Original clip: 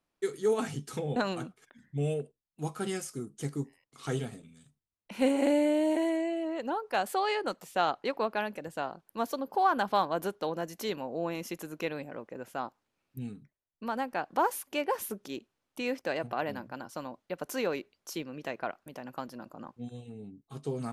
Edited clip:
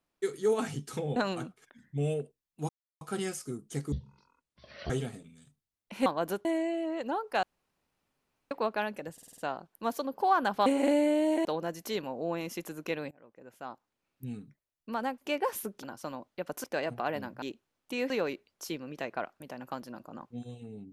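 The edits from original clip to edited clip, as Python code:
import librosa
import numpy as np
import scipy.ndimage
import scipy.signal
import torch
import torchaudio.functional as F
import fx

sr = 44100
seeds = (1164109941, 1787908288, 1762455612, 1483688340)

y = fx.edit(x, sr, fx.insert_silence(at_s=2.69, length_s=0.32),
    fx.speed_span(start_s=3.6, length_s=0.49, speed=0.5),
    fx.swap(start_s=5.25, length_s=0.79, other_s=10.0, other_length_s=0.39),
    fx.room_tone_fill(start_s=7.02, length_s=1.08),
    fx.stutter(start_s=8.72, slice_s=0.05, count=6),
    fx.fade_in_from(start_s=12.05, length_s=1.27, floor_db=-23.0),
    fx.cut(start_s=14.12, length_s=0.52),
    fx.swap(start_s=15.29, length_s=0.68, other_s=16.75, other_length_s=0.81), tone=tone)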